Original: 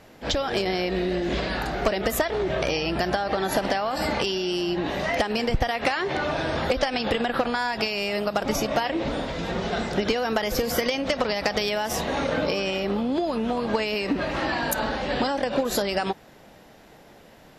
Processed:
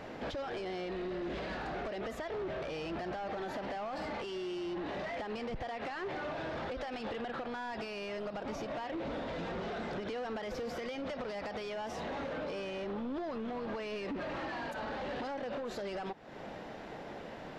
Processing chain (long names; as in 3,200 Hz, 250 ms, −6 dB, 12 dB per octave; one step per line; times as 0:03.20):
low-shelf EQ 170 Hz −8.5 dB
in parallel at +2 dB: brickwall limiter −20.5 dBFS, peak gain reduction 9.5 dB
on the sum: downward compressor 5 to 1, threshold −34 dBFS, peak gain reduction 17 dB
gain into a clipping stage and back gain 35 dB
head-to-tape spacing loss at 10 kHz 21 dB
level +1 dB